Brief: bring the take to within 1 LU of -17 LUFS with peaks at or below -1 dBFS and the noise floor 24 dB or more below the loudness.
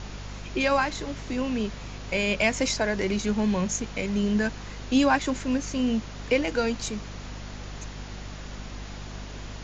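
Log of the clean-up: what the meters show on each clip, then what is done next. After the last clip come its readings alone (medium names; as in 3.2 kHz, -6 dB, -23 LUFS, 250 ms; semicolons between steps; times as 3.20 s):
hum 50 Hz; highest harmonic 250 Hz; hum level -37 dBFS; noise floor -39 dBFS; noise floor target -51 dBFS; loudness -26.5 LUFS; peak level -10.0 dBFS; loudness target -17.0 LUFS
-> hum notches 50/100/150/200/250 Hz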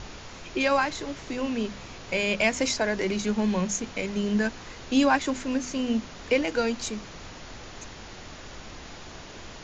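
hum not found; noise floor -43 dBFS; noise floor target -51 dBFS
-> noise print and reduce 8 dB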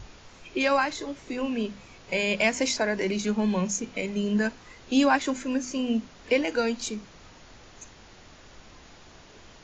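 noise floor -51 dBFS; loudness -27.0 LUFS; peak level -9.5 dBFS; loudness target -17.0 LUFS
-> trim +10 dB; peak limiter -1 dBFS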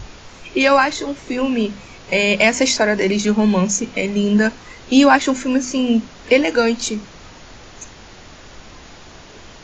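loudness -17.0 LUFS; peak level -1.0 dBFS; noise floor -41 dBFS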